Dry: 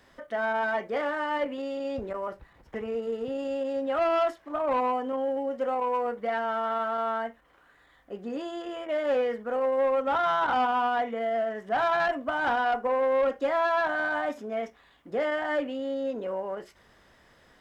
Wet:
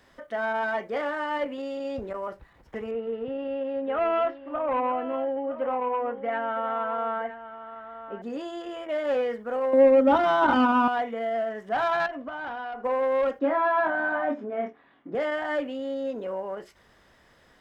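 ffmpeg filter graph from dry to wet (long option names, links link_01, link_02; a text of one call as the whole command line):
ffmpeg -i in.wav -filter_complex "[0:a]asettb=1/sr,asplit=3[link_01][link_02][link_03];[link_01]atrim=end=2.914[link_04];[link_02]atrim=start=2.91:end=8.22,asetpts=PTS-STARTPTS,afade=type=in:duration=0.004:curve=qsin,afade=type=out:start_time=5.306:duration=0.004:curve=qsin,lowpass=frequency=3000:width=0.5412,lowpass=frequency=3000:width=1.3066,aecho=1:1:965:0.237,atrim=end_sample=234171[link_05];[link_03]atrim=start=8.216[link_06];[link_04][link_05]acrossfade=duration=0.004:curve1=hsin:curve2=qsin[link_07];[link_07][link_06]acrossfade=duration=0.004:curve1=qsin:curve2=hsin,asettb=1/sr,asplit=3[link_08][link_09][link_10];[link_08]atrim=end=9.734[link_11];[link_09]atrim=start=9.73:end=10.88,asetpts=PTS-STARTPTS,afade=type=in:duration=0.004:curve=qsin,afade=type=out:start_time=1.146:duration=0.004:curve=qsin,equalizer=frequency=210:width_type=o:width=2.7:gain=12,aecho=1:1:3.3:0.7,atrim=end_sample=50715[link_12];[link_10]atrim=start=10.876[link_13];[link_11][link_12]acrossfade=duration=0.004:curve1=hsin:curve2=qsin[link_14];[link_14][link_13]acrossfade=duration=0.004:curve1=qsin:curve2=hsin,asettb=1/sr,asplit=3[link_15][link_16][link_17];[link_15]atrim=end=12.064[link_18];[link_16]atrim=start=12.06:end=12.84,asetpts=PTS-STARTPTS,afade=type=in:duration=0.004:curve=qsin,afade=type=out:start_time=0.776:duration=0.004:curve=qsin,lowpass=4500,acompressor=threshold=-31dB:ratio=12:attack=3.2:release=140:knee=1:detection=peak[link_19];[link_17]atrim=start=12.836[link_20];[link_18][link_19]acrossfade=duration=0.004:curve1=hsin:curve2=qsin[link_21];[link_21][link_20]acrossfade=duration=0.004:curve1=qsin:curve2=hsin,asettb=1/sr,asplit=3[link_22][link_23][link_24];[link_22]atrim=end=13.394[link_25];[link_23]atrim=start=13.39:end=15.15,asetpts=PTS-STARTPTS,afade=type=in:duration=0.004:curve=qsin,afade=type=out:start_time=1.756:duration=0.004:curve=qsin,highpass=130,lowpass=2000,equalizer=frequency=270:width_type=o:width=0.68:gain=8,asplit=2[link_26][link_27];[link_27]adelay=25,volume=-4dB[link_28];[link_26][link_28]amix=inputs=2:normalize=0,atrim=end_sample=77616[link_29];[link_24]atrim=start=15.146[link_30];[link_25][link_29]acrossfade=duration=0.004:curve1=hsin:curve2=qsin[link_31];[link_31][link_30]acrossfade=duration=0.004:curve1=qsin:curve2=hsin" out.wav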